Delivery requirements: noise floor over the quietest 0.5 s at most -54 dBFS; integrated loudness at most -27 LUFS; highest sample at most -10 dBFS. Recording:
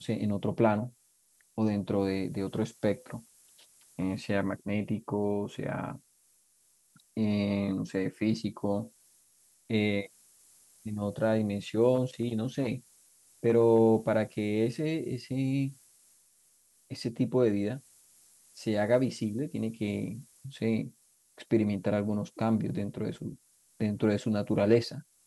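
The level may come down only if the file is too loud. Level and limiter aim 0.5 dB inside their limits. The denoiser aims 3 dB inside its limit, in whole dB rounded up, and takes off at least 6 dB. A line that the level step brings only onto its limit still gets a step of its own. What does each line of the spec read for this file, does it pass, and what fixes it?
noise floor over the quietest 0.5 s -67 dBFS: OK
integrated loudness -30.5 LUFS: OK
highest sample -10.5 dBFS: OK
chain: none

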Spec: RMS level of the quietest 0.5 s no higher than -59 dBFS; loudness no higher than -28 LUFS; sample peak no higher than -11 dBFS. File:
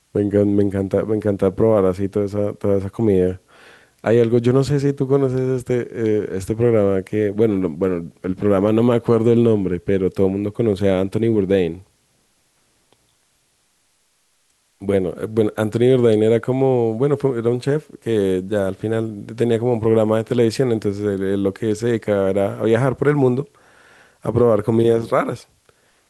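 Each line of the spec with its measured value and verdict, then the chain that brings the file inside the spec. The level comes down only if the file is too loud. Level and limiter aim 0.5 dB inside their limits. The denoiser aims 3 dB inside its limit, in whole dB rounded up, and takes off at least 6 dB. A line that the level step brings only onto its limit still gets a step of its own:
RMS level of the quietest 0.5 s -63 dBFS: OK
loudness -18.5 LUFS: fail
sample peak -4.0 dBFS: fail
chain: gain -10 dB

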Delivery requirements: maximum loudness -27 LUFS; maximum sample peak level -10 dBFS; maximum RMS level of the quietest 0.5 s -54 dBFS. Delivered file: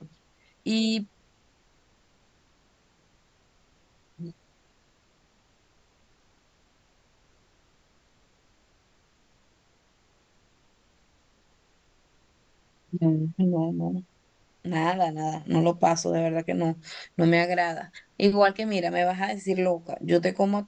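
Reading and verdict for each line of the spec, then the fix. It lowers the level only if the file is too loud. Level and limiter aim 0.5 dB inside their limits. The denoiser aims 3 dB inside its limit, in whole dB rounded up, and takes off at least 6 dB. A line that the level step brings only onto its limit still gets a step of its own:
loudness -26.0 LUFS: fail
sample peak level -7.0 dBFS: fail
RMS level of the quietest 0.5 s -65 dBFS: OK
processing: gain -1.5 dB; limiter -10.5 dBFS

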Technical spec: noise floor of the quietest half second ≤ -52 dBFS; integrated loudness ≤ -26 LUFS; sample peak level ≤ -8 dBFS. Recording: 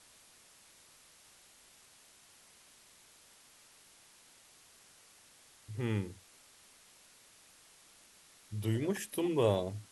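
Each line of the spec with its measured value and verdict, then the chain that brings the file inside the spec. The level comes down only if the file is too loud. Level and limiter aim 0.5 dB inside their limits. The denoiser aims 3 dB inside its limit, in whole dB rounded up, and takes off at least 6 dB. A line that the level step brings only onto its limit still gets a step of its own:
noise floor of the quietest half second -62 dBFS: OK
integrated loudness -34.5 LUFS: OK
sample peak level -16.0 dBFS: OK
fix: none

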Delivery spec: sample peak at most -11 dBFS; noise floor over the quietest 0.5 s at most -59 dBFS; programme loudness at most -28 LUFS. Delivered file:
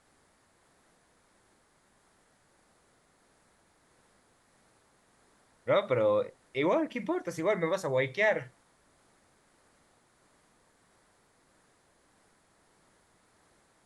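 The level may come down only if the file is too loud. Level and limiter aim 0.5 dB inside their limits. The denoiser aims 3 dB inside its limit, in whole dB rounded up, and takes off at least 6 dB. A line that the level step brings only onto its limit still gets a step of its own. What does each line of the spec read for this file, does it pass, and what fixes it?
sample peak -15.0 dBFS: OK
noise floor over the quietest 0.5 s -67 dBFS: OK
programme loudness -29.5 LUFS: OK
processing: none

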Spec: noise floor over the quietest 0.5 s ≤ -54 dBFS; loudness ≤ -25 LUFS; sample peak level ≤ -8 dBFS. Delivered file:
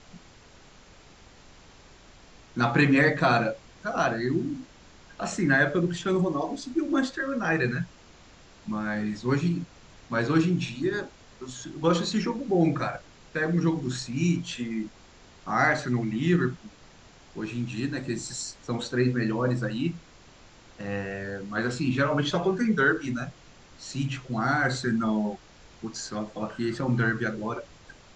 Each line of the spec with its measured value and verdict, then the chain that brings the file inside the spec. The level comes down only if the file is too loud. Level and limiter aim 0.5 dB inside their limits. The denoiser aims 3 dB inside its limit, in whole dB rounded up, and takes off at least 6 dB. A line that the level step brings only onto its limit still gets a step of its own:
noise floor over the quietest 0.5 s -52 dBFS: fail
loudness -27.0 LUFS: OK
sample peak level -9.0 dBFS: OK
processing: denoiser 6 dB, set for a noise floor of -52 dBFS

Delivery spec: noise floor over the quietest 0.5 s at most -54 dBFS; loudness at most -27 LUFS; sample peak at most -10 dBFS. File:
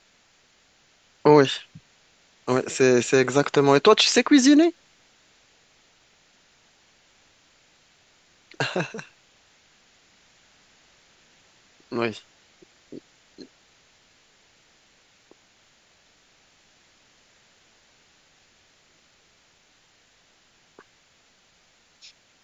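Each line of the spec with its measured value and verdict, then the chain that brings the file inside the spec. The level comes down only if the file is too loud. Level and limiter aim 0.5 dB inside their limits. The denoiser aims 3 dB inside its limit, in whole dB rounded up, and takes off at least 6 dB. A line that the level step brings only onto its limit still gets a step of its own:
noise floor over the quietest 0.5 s -61 dBFS: OK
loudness -20.0 LUFS: fail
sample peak -2.5 dBFS: fail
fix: gain -7.5 dB; limiter -10.5 dBFS

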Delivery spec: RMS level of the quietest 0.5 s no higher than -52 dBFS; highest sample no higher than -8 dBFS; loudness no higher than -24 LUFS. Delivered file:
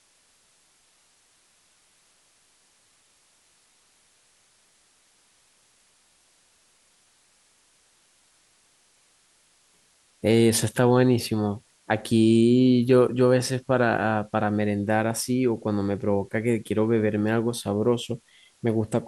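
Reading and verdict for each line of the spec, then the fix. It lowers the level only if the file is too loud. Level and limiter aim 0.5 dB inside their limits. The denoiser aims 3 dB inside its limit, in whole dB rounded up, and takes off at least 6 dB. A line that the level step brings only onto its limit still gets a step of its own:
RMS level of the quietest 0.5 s -63 dBFS: OK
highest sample -6.0 dBFS: fail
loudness -23.0 LUFS: fail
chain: gain -1.5 dB; limiter -8.5 dBFS

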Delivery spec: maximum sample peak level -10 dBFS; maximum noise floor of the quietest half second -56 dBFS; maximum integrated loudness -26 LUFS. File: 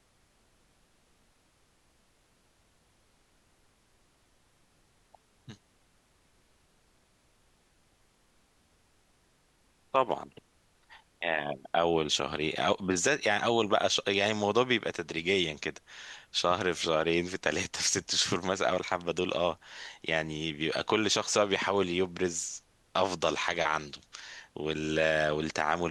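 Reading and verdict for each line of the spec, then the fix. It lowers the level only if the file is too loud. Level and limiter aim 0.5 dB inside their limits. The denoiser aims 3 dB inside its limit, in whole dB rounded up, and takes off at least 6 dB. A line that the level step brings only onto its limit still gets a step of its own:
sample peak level -8.5 dBFS: fail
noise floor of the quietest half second -68 dBFS: OK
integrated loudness -29.5 LUFS: OK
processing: limiter -10.5 dBFS

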